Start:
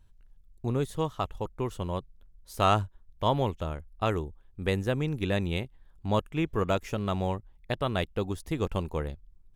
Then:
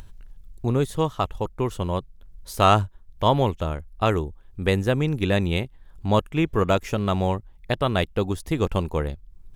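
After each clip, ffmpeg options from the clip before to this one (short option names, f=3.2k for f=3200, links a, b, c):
-af "acompressor=mode=upward:threshold=-39dB:ratio=2.5,volume=6.5dB"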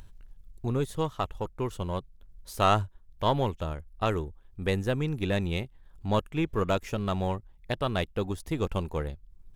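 -af "aeval=exprs='if(lt(val(0),0),0.708*val(0),val(0))':c=same,volume=-4.5dB"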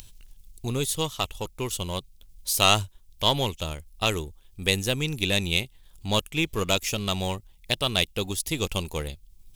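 -af "aexciter=amount=6.8:drive=2.6:freq=2.3k"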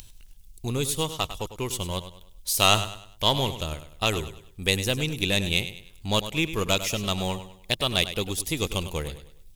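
-af "aecho=1:1:101|202|303|404:0.251|0.0904|0.0326|0.0117"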